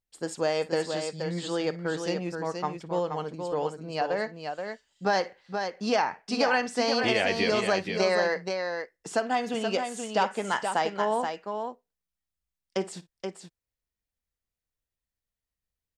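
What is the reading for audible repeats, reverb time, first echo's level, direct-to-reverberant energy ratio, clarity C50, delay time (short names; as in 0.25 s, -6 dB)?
2, none, -18.0 dB, none, none, 56 ms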